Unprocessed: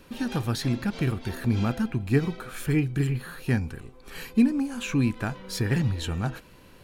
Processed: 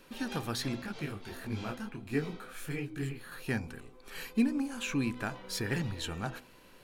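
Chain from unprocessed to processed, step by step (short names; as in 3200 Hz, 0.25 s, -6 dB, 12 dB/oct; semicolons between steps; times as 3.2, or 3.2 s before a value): bell 70 Hz -10 dB 3 oct; de-hum 61.63 Hz, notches 20; 0.82–3.32 detuned doubles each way 49 cents; gain -3 dB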